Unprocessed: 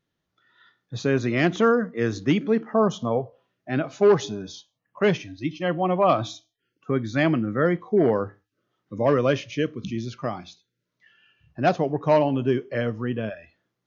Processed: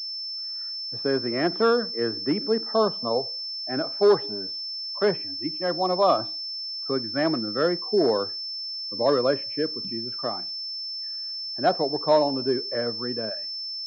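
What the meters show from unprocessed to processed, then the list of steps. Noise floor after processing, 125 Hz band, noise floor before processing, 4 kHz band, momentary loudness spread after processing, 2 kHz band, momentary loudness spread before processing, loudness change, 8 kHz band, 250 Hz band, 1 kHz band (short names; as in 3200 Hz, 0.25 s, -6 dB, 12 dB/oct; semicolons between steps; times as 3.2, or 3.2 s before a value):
-33 dBFS, -11.0 dB, -80 dBFS, +12.5 dB, 9 LU, -5.0 dB, 14 LU, -1.5 dB, n/a, -4.5 dB, -0.5 dB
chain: three-band isolator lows -14 dB, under 260 Hz, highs -21 dB, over 2000 Hz; pulse-width modulation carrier 5300 Hz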